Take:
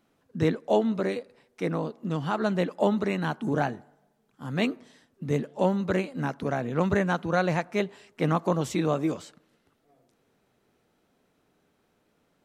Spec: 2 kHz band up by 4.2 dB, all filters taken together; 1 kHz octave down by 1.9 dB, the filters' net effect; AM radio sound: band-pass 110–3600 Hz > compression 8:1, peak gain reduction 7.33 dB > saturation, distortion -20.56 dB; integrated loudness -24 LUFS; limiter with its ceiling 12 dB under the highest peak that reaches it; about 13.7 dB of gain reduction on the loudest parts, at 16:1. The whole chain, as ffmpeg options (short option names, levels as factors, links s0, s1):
-af "equalizer=f=1000:t=o:g=-4.5,equalizer=f=2000:t=o:g=7.5,acompressor=threshold=0.0251:ratio=16,alimiter=level_in=2:limit=0.0631:level=0:latency=1,volume=0.501,highpass=110,lowpass=3600,acompressor=threshold=0.00891:ratio=8,asoftclip=threshold=0.015,volume=15.8"